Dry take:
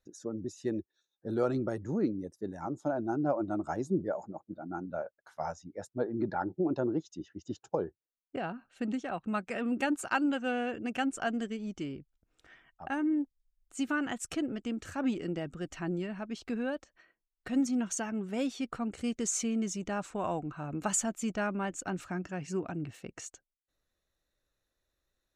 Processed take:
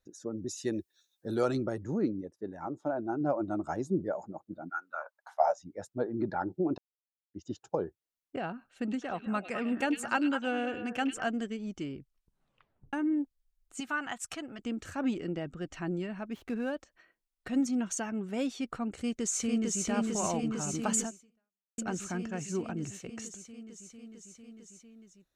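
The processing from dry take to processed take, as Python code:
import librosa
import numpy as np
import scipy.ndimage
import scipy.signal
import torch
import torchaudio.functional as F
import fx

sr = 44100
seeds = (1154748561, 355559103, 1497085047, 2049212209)

y = fx.high_shelf(x, sr, hz=2300.0, db=11.5, at=(0.47, 1.63))
y = fx.bass_treble(y, sr, bass_db=-5, treble_db=-12, at=(2.21, 3.21))
y = fx.highpass_res(y, sr, hz=fx.line((4.68, 1700.0), (5.57, 560.0)), q=4.6, at=(4.68, 5.57), fade=0.02)
y = fx.echo_stepped(y, sr, ms=103, hz=3200.0, octaves=-1.4, feedback_pct=70, wet_db=-4.0, at=(8.9, 11.28), fade=0.02)
y = fx.low_shelf_res(y, sr, hz=600.0, db=-8.0, q=1.5, at=(13.8, 14.59))
y = fx.air_absorb(y, sr, metres=55.0, at=(15.2, 15.74))
y = fx.median_filter(y, sr, points=9, at=(16.32, 16.72))
y = fx.echo_throw(y, sr, start_s=18.94, length_s=0.9, ms=450, feedback_pct=80, wet_db=-2.0)
y = fx.edit(y, sr, fx.silence(start_s=6.78, length_s=0.56),
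    fx.tape_stop(start_s=11.97, length_s=0.96),
    fx.fade_out_span(start_s=21.03, length_s=0.75, curve='exp'), tone=tone)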